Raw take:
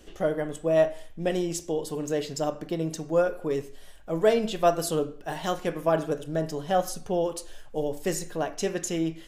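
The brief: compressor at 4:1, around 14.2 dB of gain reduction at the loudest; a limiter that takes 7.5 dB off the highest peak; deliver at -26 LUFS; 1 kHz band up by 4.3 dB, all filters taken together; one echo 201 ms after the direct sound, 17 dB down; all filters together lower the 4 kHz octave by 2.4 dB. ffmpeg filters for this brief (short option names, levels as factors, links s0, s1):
-af "equalizer=f=1000:t=o:g=7,equalizer=f=4000:t=o:g=-4,acompressor=threshold=0.0282:ratio=4,alimiter=level_in=1.19:limit=0.0631:level=0:latency=1,volume=0.841,aecho=1:1:201:0.141,volume=3.35"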